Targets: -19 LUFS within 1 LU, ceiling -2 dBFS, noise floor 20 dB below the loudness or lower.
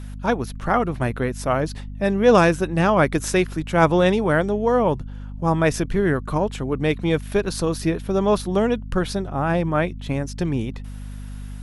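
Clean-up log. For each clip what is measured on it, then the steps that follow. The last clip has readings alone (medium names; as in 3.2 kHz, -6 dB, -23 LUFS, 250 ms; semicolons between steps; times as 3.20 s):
hum 50 Hz; highest harmonic 250 Hz; hum level -31 dBFS; loudness -21.5 LUFS; peak level -3.0 dBFS; loudness target -19.0 LUFS
-> de-hum 50 Hz, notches 5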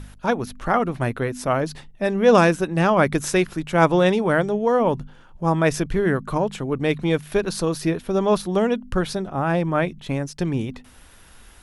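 hum not found; loudness -21.5 LUFS; peak level -3.0 dBFS; loudness target -19.0 LUFS
-> trim +2.5 dB; peak limiter -2 dBFS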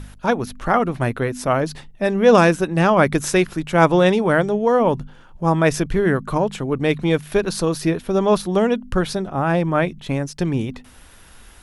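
loudness -19.0 LUFS; peak level -2.0 dBFS; noise floor -45 dBFS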